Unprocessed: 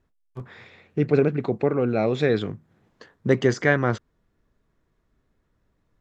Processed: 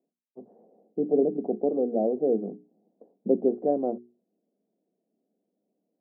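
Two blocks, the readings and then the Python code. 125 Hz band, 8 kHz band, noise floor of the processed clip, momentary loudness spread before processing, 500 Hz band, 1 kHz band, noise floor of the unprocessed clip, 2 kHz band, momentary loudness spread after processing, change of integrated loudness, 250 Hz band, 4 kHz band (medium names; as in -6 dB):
-20.0 dB, no reading, -83 dBFS, 14 LU, -2.5 dB, -5.5 dB, -71 dBFS, under -40 dB, 13 LU, -4.0 dB, -3.0 dB, under -40 dB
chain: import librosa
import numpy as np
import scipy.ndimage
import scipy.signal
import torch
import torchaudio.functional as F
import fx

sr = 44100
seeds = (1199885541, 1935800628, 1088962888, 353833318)

y = scipy.signal.sosfilt(scipy.signal.cheby1(4, 1.0, [190.0, 740.0], 'bandpass', fs=sr, output='sos'), x)
y = fx.hum_notches(y, sr, base_hz=60, count=7)
y = F.gain(torch.from_numpy(y), -1.5).numpy()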